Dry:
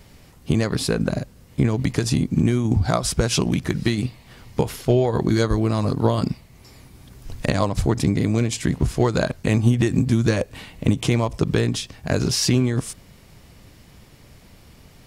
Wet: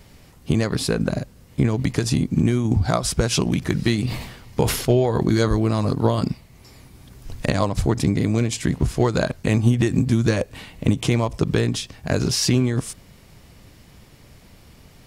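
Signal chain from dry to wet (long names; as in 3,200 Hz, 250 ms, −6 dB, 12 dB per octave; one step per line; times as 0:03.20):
0:03.59–0:05.94: level that may fall only so fast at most 66 dB per second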